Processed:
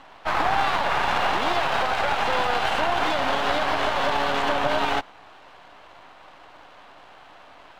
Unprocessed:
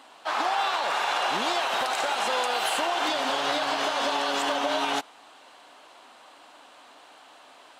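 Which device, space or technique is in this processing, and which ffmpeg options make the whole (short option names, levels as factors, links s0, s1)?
crystal radio: -af "highpass=260,lowpass=2700,aeval=exprs='if(lt(val(0),0),0.251*val(0),val(0))':c=same,volume=2.37"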